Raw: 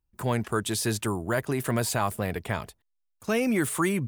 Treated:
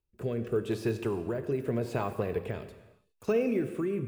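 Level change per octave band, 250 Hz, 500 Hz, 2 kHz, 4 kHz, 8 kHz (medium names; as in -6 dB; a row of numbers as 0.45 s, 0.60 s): -4.0 dB, 0.0 dB, -11.5 dB, -14.5 dB, -22.5 dB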